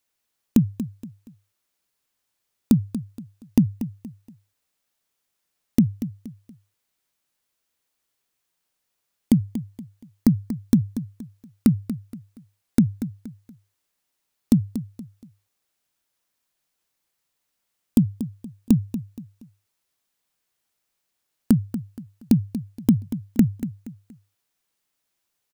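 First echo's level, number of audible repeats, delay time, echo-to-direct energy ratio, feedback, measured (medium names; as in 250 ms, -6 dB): -12.0 dB, 3, 236 ms, -11.5 dB, 34%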